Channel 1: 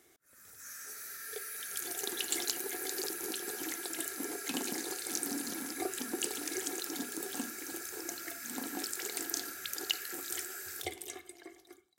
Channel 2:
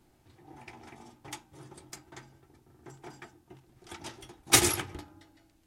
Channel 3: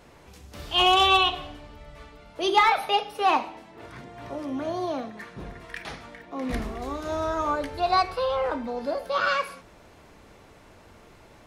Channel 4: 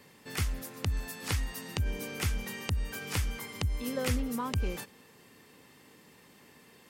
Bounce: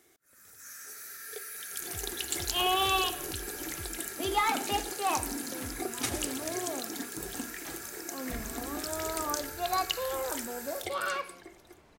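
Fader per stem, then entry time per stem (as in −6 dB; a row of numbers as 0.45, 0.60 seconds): +0.5, −13.0, −8.5, −14.0 decibels; 0.00, 1.50, 1.80, 1.55 seconds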